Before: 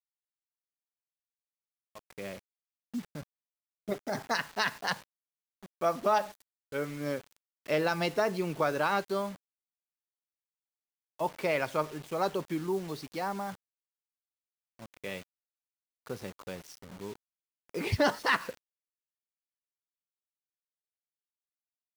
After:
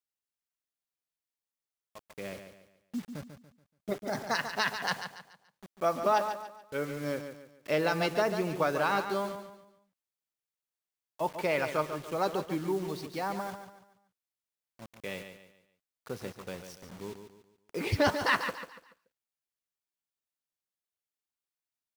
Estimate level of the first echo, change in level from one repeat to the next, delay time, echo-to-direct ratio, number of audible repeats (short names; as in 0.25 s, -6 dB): -9.0 dB, -9.0 dB, 0.143 s, -8.5 dB, 3